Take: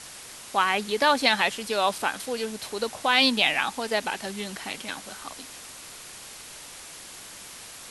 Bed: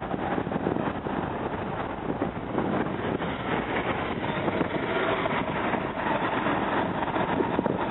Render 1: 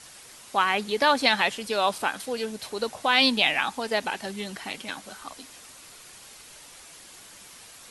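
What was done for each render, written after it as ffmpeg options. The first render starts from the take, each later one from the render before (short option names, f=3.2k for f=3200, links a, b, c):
-af "afftdn=nr=6:nf=-43"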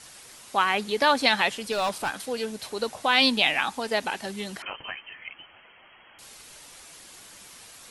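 -filter_complex "[0:a]asettb=1/sr,asplit=3[a][b][c];[a]atrim=end=1.724[d];[b]atrim=start=1.72:end=2.34,asetpts=PTS-STARTPTS,afade=t=in:d=0.004:c=qsin,afade=t=out:st=0.616:d=0.004:c=qsin,asoftclip=type=hard:threshold=-22dB[e];[c]atrim=start=2.336[f];[d][e]acrossfade=d=0.004:c1=hsin:c2=qsin[g];[g][f]acrossfade=d=0.004:c1=qsin:c2=hsin,asettb=1/sr,asplit=3[h][i][j];[h]atrim=end=4.624[k];[i]atrim=start=4.62:end=6.19,asetpts=PTS-STARTPTS,afade=t=in:d=0.004:c=qsin,afade=t=out:st=1.566:d=0.004:c=qsin,lowpass=f=2.8k:t=q:w=0.5098,lowpass=f=2.8k:t=q:w=0.6013,lowpass=f=2.8k:t=q:w=0.9,lowpass=f=2.8k:t=q:w=2.563,afreqshift=-3300[l];[j]atrim=start=6.186[m];[k][l]acrossfade=d=0.004:c1=hsin:c2=qsin[n];[n][m]acrossfade=d=0.004:c1=qsin:c2=hsin"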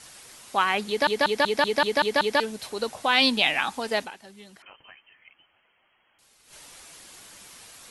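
-filter_complex "[0:a]asplit=11[a][b][c][d][e][f][g][h][i][j][k];[a]atrim=end=1.072[l];[b]atrim=start=0.878:end=1.072[m];[c]atrim=start=0.878:end=1.072[n];[d]atrim=start=0.878:end=1.072[o];[e]atrim=start=0.878:end=1.072[p];[f]atrim=start=0.878:end=1.072[q];[g]atrim=start=0.878:end=1.072[r];[h]atrim=start=0.878:end=1.072[s];[i]atrim=start=2.398:end=4.45,asetpts=PTS-STARTPTS,afade=t=out:st=1.622:d=0.43:c=exp:silence=0.211349[t];[j]atrim=start=4.45:end=6.11,asetpts=PTS-STARTPTS,volume=-13.5dB[u];[k]atrim=start=6.11,asetpts=PTS-STARTPTS,afade=t=in:d=0.43:c=exp:silence=0.211349[v];[l][m]acrossfade=d=0.004:c1=hsin:c2=hsin[w];[w][n]acrossfade=d=0.004:c1=hsin:c2=hsin[x];[x][o]acrossfade=d=0.004:c1=hsin:c2=hsin[y];[y][p]acrossfade=d=0.004:c1=hsin:c2=hsin[z];[z][q]acrossfade=d=0.004:c1=hsin:c2=hsin[aa];[aa][r]acrossfade=d=0.004:c1=hsin:c2=hsin[ab];[ab][s]acrossfade=d=0.004:c1=hsin:c2=hsin[ac];[t][u][v]concat=n=3:v=0:a=1[ad];[ac][ad]acrossfade=d=0.004:c1=hsin:c2=hsin"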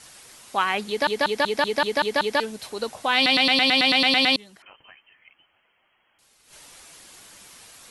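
-filter_complex "[0:a]asplit=12[a][b][c][d][e][f][g][h][i][j][k][l];[a]atrim=end=3.262[m];[b]atrim=start=3.148:end=3.262[n];[c]atrim=start=3.148:end=3.262[o];[d]atrim=start=3.148:end=3.262[p];[e]atrim=start=3.148:end=3.262[q];[f]atrim=start=3.148:end=3.262[r];[g]atrim=start=3.148:end=3.262[s];[h]atrim=start=3.148:end=3.262[t];[i]atrim=start=3.148:end=3.262[u];[j]atrim=start=3.148:end=3.262[v];[k]atrim=start=3.148:end=3.262[w];[l]atrim=start=4.358[x];[m][n]acrossfade=d=0.004:c1=hsin:c2=hsin[y];[y][o]acrossfade=d=0.004:c1=hsin:c2=hsin[z];[z][p]acrossfade=d=0.004:c1=hsin:c2=hsin[aa];[aa][q]acrossfade=d=0.004:c1=hsin:c2=hsin[ab];[ab][r]acrossfade=d=0.004:c1=hsin:c2=hsin[ac];[ac][s]acrossfade=d=0.004:c1=hsin:c2=hsin[ad];[ad][t]acrossfade=d=0.004:c1=hsin:c2=hsin[ae];[ae][u]acrossfade=d=0.004:c1=hsin:c2=hsin[af];[af][v]acrossfade=d=0.004:c1=hsin:c2=hsin[ag];[ag][w]acrossfade=d=0.004:c1=hsin:c2=hsin[ah];[ah][x]acrossfade=d=0.004:c1=hsin:c2=hsin"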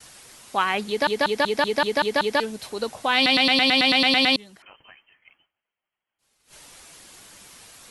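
-af "agate=range=-33dB:threshold=-53dB:ratio=3:detection=peak,lowshelf=f=370:g=3"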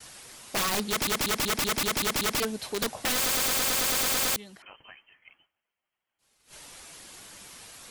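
-af "aeval=exprs='(mod(11.9*val(0)+1,2)-1)/11.9':c=same"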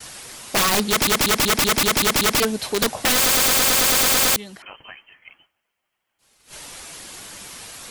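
-af "volume=9dB"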